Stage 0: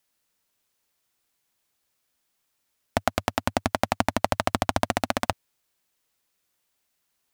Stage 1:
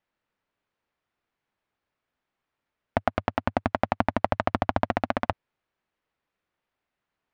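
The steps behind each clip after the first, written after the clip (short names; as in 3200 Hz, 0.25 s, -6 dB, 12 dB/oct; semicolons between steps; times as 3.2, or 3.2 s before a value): LPF 2100 Hz 12 dB/oct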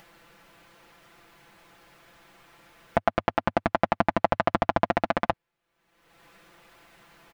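comb 5.9 ms, depth 76%; upward compressor, threshold -34 dBFS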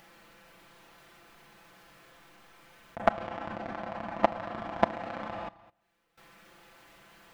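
Schroeder reverb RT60 0.64 s, combs from 29 ms, DRR -0.5 dB; level quantiser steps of 19 dB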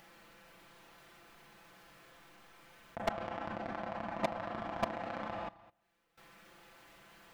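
hard clip -22 dBFS, distortion -3 dB; gain -2.5 dB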